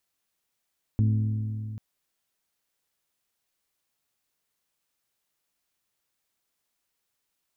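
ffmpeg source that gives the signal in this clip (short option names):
-f lavfi -i "aevalsrc='0.119*pow(10,-3*t/2.99)*sin(2*PI*108*t)+0.0473*pow(10,-3*t/2.429)*sin(2*PI*216*t)+0.0188*pow(10,-3*t/2.299)*sin(2*PI*259.2*t)+0.0075*pow(10,-3*t/2.15)*sin(2*PI*324*t)+0.00299*pow(10,-3*t/1.973)*sin(2*PI*432*t)':d=0.79:s=44100"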